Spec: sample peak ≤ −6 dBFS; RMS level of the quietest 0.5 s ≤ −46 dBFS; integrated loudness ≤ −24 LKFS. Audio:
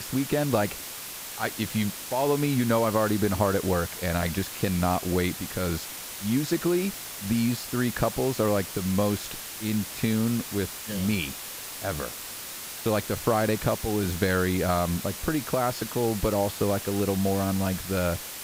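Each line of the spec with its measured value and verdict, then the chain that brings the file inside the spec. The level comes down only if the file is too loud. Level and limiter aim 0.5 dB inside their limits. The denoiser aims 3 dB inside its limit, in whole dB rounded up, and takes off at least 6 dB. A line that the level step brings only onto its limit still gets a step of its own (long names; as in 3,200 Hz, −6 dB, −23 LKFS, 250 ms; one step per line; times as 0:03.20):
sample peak −9.5 dBFS: in spec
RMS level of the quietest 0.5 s −38 dBFS: out of spec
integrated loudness −27.0 LKFS: in spec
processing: broadband denoise 11 dB, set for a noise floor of −38 dBFS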